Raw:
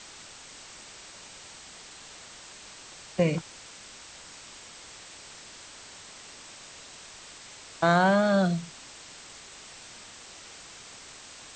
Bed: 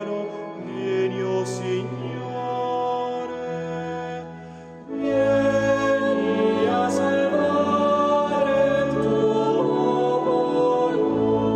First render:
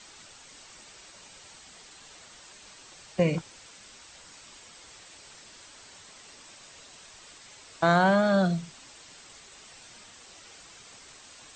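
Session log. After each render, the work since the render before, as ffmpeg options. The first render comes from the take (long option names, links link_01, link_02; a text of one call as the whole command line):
ffmpeg -i in.wav -af "afftdn=noise_reduction=6:noise_floor=-48" out.wav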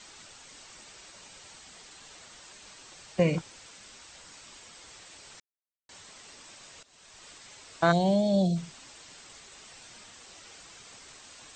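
ffmpeg -i in.wav -filter_complex "[0:a]asplit=3[link_01][link_02][link_03];[link_01]afade=type=out:start_time=7.91:duration=0.02[link_04];[link_02]asuperstop=centerf=1400:order=4:qfactor=0.57,afade=type=in:start_time=7.91:duration=0.02,afade=type=out:start_time=8.55:duration=0.02[link_05];[link_03]afade=type=in:start_time=8.55:duration=0.02[link_06];[link_04][link_05][link_06]amix=inputs=3:normalize=0,asplit=4[link_07][link_08][link_09][link_10];[link_07]atrim=end=5.4,asetpts=PTS-STARTPTS,afade=type=out:start_time=5.396:duration=0.004:curve=hsin[link_11];[link_08]atrim=start=5.4:end=5.89,asetpts=PTS-STARTPTS,volume=0[link_12];[link_09]atrim=start=5.89:end=6.83,asetpts=PTS-STARTPTS,afade=type=in:duration=0.004:curve=hsin,afade=type=out:start_time=0.936:duration=0.004:curve=hsin:silence=0.149624[link_13];[link_10]atrim=start=6.83,asetpts=PTS-STARTPTS,afade=type=in:duration=0.42:silence=0.149624[link_14];[link_11][link_12][link_13][link_14]concat=n=4:v=0:a=1" out.wav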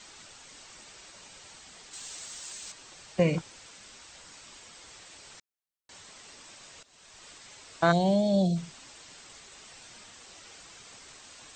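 ffmpeg -i in.wav -filter_complex "[0:a]asettb=1/sr,asplit=3[link_01][link_02][link_03];[link_01]atrim=end=1.934[link_04];[link_02]atrim=start=1.93:end=2.72,asetpts=PTS-STARTPTS,afade=type=in:duration=0.004:curve=qsin,afade=type=out:start_time=0.786:duration=0.004:curve=qsin,aemphasis=mode=production:type=75kf[link_05];[link_03]atrim=start=2.716[link_06];[link_04][link_05]acrossfade=duration=0.004:curve1=hsin:curve2=qsin[link_07];[link_07][link_06]acrossfade=duration=0.004:curve1=qsin:curve2=hsin" out.wav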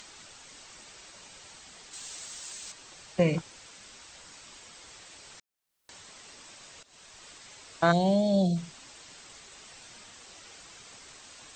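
ffmpeg -i in.wav -af "acompressor=mode=upward:threshold=-48dB:ratio=2.5" out.wav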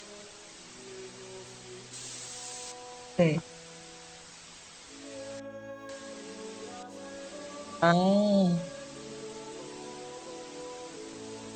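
ffmpeg -i in.wav -i bed.wav -filter_complex "[1:a]volume=-23.5dB[link_01];[0:a][link_01]amix=inputs=2:normalize=0" out.wav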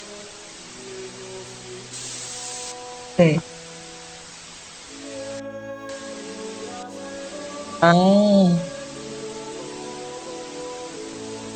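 ffmpeg -i in.wav -af "volume=9dB,alimiter=limit=-2dB:level=0:latency=1" out.wav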